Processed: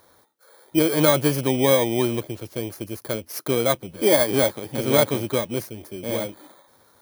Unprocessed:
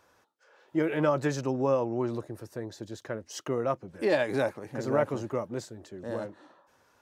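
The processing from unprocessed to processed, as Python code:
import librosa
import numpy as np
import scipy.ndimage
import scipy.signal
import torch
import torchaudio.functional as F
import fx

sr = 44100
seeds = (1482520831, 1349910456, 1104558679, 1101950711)

y = fx.bit_reversed(x, sr, seeds[0], block=16)
y = y * 10.0 ** (8.0 / 20.0)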